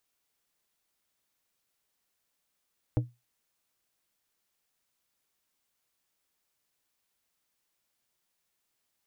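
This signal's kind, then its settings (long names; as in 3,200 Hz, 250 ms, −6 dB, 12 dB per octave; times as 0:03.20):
struck glass plate, lowest mode 121 Hz, decay 0.23 s, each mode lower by 5.5 dB, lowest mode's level −19.5 dB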